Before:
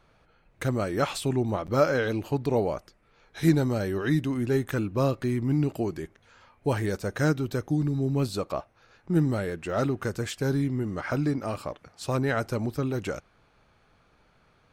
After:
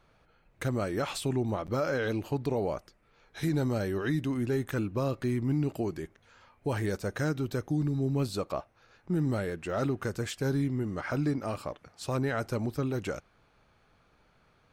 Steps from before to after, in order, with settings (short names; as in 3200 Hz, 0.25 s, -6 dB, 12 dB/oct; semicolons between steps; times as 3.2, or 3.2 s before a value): limiter -18.5 dBFS, peak gain reduction 8.5 dB; gain -2.5 dB